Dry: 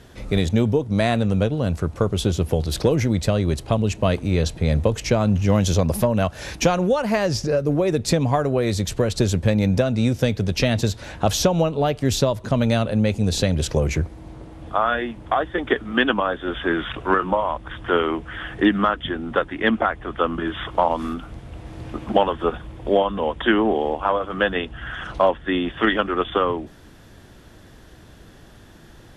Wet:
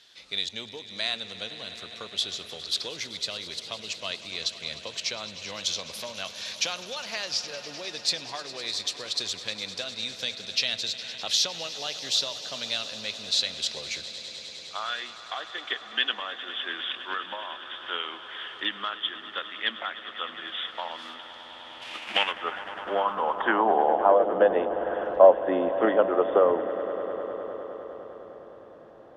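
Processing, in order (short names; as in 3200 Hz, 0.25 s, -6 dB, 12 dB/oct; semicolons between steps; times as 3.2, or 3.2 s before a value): 21.81–22.31 spectral whitening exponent 0.6; swelling echo 0.102 s, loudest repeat 5, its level -17 dB; band-pass sweep 4000 Hz -> 590 Hz, 21.46–24.24; gain +5 dB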